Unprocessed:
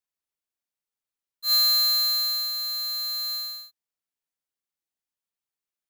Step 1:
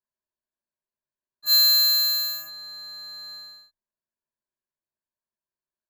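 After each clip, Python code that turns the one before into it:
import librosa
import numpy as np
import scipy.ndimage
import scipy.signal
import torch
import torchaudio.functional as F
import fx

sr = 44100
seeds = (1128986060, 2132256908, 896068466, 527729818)

y = fx.wiener(x, sr, points=15)
y = fx.ripple_eq(y, sr, per_octave=1.4, db=13)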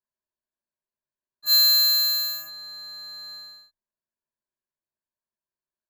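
y = x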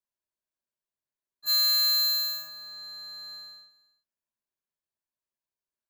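y = np.clip(10.0 ** (17.5 / 20.0) * x, -1.0, 1.0) / 10.0 ** (17.5 / 20.0)
y = y + 10.0 ** (-19.0 / 20.0) * np.pad(y, (int(332 * sr / 1000.0), 0))[:len(y)]
y = y * 10.0 ** (-3.0 / 20.0)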